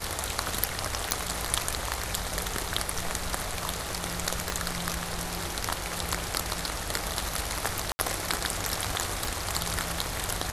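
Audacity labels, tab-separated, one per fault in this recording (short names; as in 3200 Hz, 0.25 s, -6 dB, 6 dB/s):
1.110000	1.110000	pop
4.500000	4.500000	pop
7.920000	7.990000	gap 70 ms
9.250000	9.250000	pop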